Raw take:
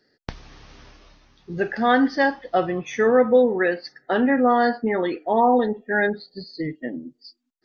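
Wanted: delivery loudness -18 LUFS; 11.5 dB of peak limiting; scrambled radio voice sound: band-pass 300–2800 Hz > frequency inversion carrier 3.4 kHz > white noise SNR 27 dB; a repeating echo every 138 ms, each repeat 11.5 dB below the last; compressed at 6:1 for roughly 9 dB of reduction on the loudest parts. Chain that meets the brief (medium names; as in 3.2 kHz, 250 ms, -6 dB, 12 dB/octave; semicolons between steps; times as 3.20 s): compression 6:1, threshold -21 dBFS; peak limiter -23.5 dBFS; band-pass 300–2800 Hz; feedback delay 138 ms, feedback 27%, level -11.5 dB; frequency inversion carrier 3.4 kHz; white noise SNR 27 dB; trim +13 dB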